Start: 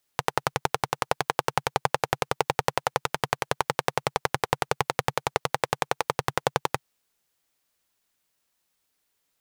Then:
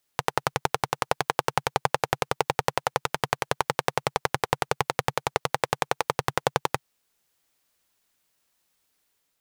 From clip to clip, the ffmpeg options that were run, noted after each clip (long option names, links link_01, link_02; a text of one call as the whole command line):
ffmpeg -i in.wav -af "dynaudnorm=framelen=150:gausssize=5:maxgain=3dB" out.wav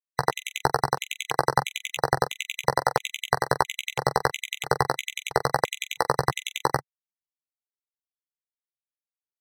ffmpeg -i in.wav -af "afftfilt=real='re*gte(hypot(re,im),0.00316)':imag='im*gte(hypot(re,im),0.00316)':win_size=1024:overlap=0.75,aecho=1:1:15|44:0.562|0.211,afftfilt=real='re*gt(sin(2*PI*1.5*pts/sr)*(1-2*mod(floor(b*sr/1024/2000),2)),0)':imag='im*gt(sin(2*PI*1.5*pts/sr)*(1-2*mod(floor(b*sr/1024/2000),2)),0)':win_size=1024:overlap=0.75,volume=3dB" out.wav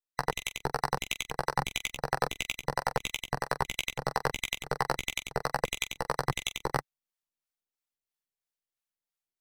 ffmpeg -i in.wav -filter_complex "[0:a]aeval=exprs='if(lt(val(0),0),0.447*val(0),val(0))':channel_layout=same,areverse,acompressor=threshold=-29dB:ratio=6,areverse,acrossover=split=530[link_01][link_02];[link_01]aeval=exprs='val(0)*(1-0.5/2+0.5/2*cos(2*PI*3*n/s))':channel_layout=same[link_03];[link_02]aeval=exprs='val(0)*(1-0.5/2-0.5/2*cos(2*PI*3*n/s))':channel_layout=same[link_04];[link_03][link_04]amix=inputs=2:normalize=0,volume=6dB" out.wav